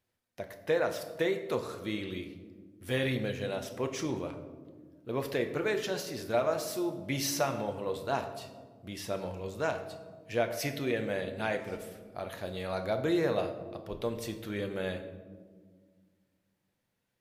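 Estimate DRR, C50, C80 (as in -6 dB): 5.5 dB, 10.0 dB, 11.5 dB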